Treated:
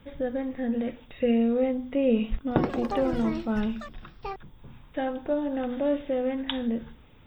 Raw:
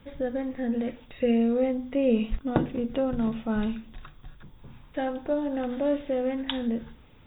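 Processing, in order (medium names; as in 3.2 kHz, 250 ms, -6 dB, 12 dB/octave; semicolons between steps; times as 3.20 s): 2.37–5.14 s: ever faster or slower copies 141 ms, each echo +7 st, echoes 3, each echo -6 dB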